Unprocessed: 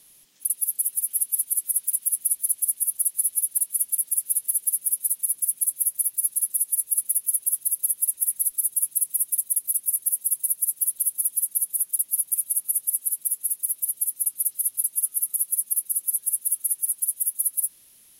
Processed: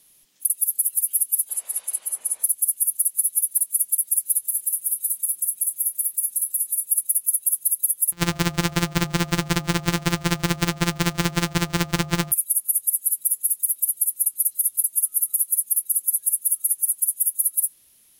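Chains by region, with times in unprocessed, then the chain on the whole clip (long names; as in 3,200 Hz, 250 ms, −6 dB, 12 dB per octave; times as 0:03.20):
0:01.49–0:02.44: low-pass filter 8,100 Hz + parametric band 780 Hz +15 dB 2.2 octaves + mains-hum notches 50/100/150/200/250/300/350/400 Hz
0:04.47–0:06.87: high-pass filter 110 Hz + downward compressor 2.5 to 1, threshold −25 dBFS + double-tracking delay 29 ms −12 dB
0:08.12–0:12.32: samples sorted by size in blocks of 256 samples + parametric band 570 Hz −9 dB 1.3 octaves + hum removal 76.34 Hz, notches 17
whole clip: noise reduction from a noise print of the clip's start 9 dB; downward compressor, threshold −23 dBFS; level +6.5 dB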